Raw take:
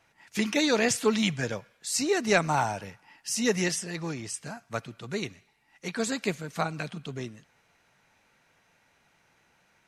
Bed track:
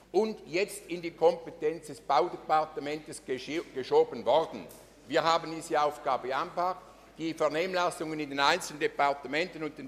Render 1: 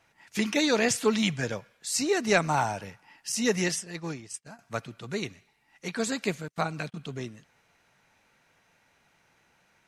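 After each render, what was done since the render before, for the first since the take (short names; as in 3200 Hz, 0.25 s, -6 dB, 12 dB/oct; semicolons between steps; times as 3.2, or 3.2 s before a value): 3.32–4.59 expander -32 dBFS; 6.48–6.98 gate -42 dBFS, range -35 dB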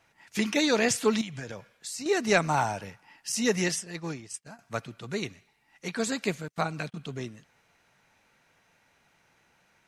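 1.21–2.06 compressor 16:1, threshold -33 dBFS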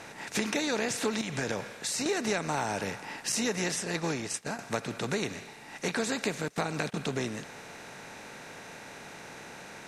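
per-bin compression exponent 0.6; compressor 5:1, threshold -27 dBFS, peak gain reduction 11.5 dB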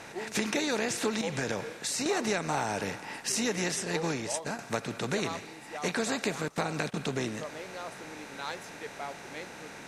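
add bed track -13 dB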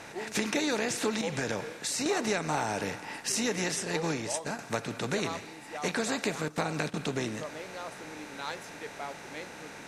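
FDN reverb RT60 0.45 s, high-frequency decay 0.85×, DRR 17 dB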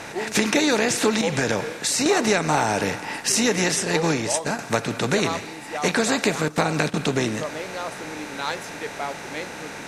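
gain +9.5 dB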